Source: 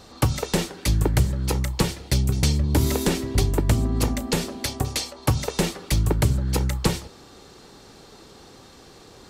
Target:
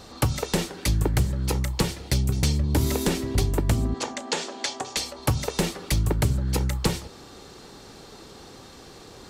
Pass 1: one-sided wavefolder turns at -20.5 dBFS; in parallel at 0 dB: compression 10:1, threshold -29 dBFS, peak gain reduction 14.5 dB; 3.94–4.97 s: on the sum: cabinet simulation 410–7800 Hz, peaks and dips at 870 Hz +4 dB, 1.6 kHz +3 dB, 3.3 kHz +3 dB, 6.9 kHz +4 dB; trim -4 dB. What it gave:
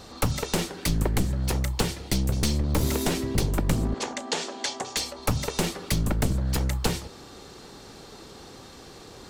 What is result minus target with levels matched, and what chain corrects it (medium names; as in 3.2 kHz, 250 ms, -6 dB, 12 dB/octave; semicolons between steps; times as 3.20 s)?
one-sided wavefolder: distortion +23 dB
one-sided wavefolder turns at -11.5 dBFS; in parallel at 0 dB: compression 10:1, threshold -29 dBFS, peak gain reduction 15 dB; 3.94–4.97 s: on the sum: cabinet simulation 410–7800 Hz, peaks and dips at 870 Hz +4 dB, 1.6 kHz +3 dB, 3.3 kHz +3 dB, 6.9 kHz +4 dB; trim -4 dB